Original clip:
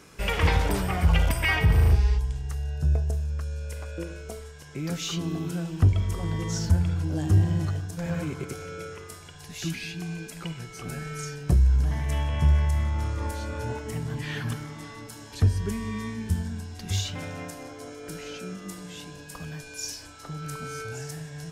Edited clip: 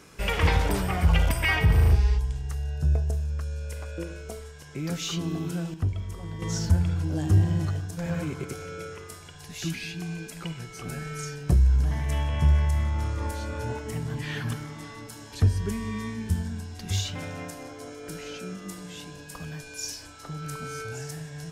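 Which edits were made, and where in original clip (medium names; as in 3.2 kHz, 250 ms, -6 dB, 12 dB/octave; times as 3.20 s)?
5.74–6.42 s: gain -7.5 dB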